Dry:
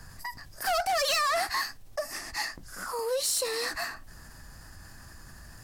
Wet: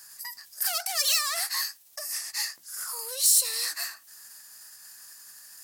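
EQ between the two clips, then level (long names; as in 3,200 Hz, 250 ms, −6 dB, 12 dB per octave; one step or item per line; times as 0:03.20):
high-pass filter 50 Hz
first difference
low-shelf EQ 74 Hz −8 dB
+8.0 dB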